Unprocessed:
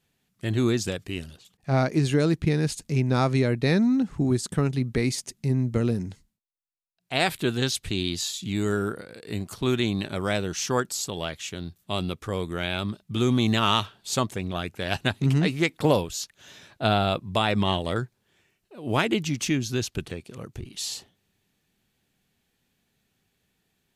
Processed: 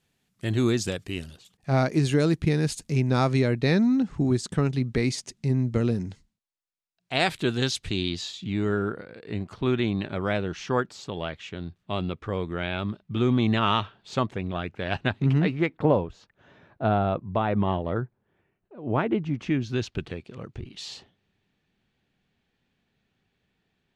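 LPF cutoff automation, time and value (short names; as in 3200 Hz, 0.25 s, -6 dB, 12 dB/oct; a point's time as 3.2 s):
2.8 s 12000 Hz
3.71 s 7000 Hz
7.82 s 7000 Hz
8.54 s 2700 Hz
15.37 s 2700 Hz
15.94 s 1300 Hz
19.31 s 1300 Hz
19.8 s 3600 Hz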